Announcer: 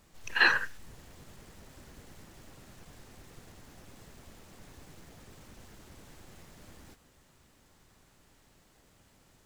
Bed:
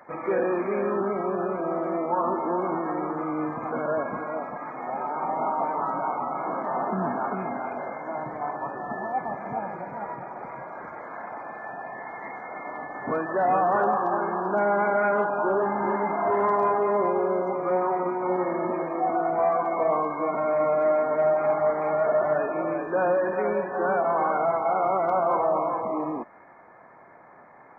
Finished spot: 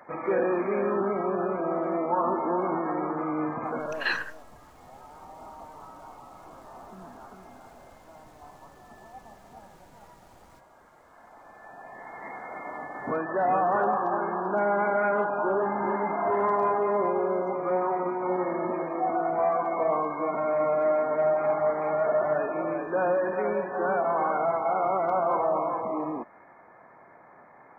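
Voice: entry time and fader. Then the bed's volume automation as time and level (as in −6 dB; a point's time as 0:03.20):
3.65 s, −5.0 dB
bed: 0:03.68 −0.5 dB
0:04.32 −18.5 dB
0:11.06 −18.5 dB
0:12.34 −2 dB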